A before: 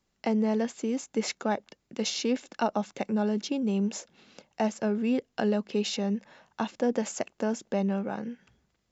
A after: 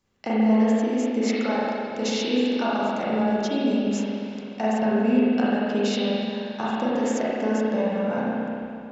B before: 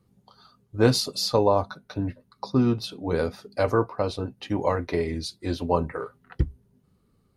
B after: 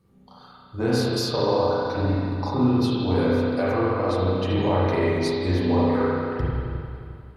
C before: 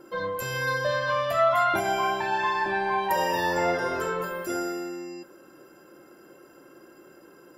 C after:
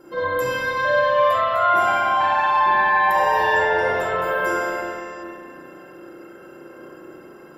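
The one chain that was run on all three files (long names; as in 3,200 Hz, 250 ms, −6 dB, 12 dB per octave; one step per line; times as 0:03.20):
downward compressor 6 to 1, threshold −26 dBFS
spring reverb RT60 2.5 s, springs 32/44 ms, chirp 50 ms, DRR −9 dB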